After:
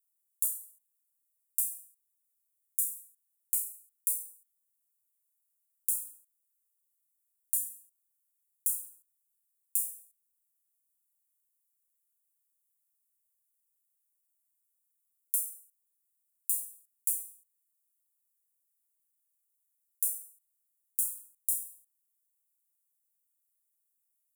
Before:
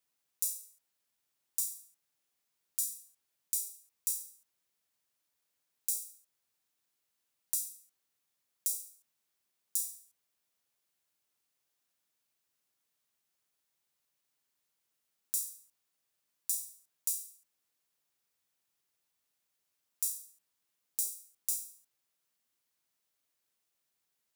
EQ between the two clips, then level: inverse Chebyshev band-stop 290–1800 Hz, stop band 80 dB; static phaser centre 660 Hz, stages 8; +5.0 dB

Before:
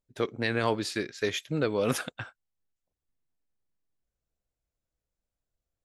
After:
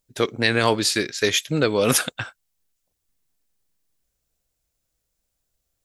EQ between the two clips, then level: treble shelf 3.3 kHz +10.5 dB; +7.0 dB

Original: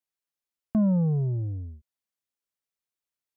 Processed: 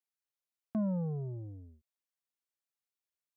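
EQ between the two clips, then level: high-pass 270 Hz 6 dB/octave; -5.5 dB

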